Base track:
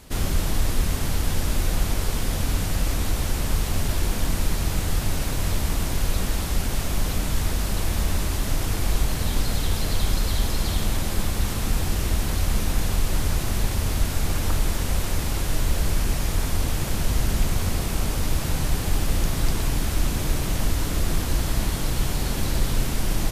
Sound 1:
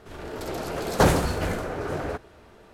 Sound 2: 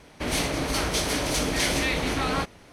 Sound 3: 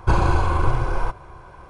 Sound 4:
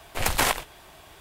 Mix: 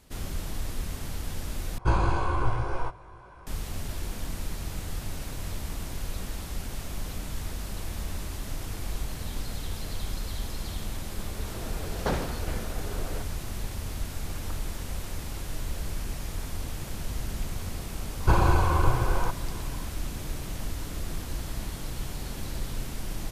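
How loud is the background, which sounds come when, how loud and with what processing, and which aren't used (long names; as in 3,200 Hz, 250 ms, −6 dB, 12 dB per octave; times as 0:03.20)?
base track −10.5 dB
0:01.78: overwrite with 3 −3 dB + chorus effect 2 Hz, delay 16.5 ms, depth 2.2 ms
0:11.06: mix in 1 −9.5 dB + Chebyshev low-pass filter 4,800 Hz
0:18.20: mix in 3 −3 dB
not used: 2, 4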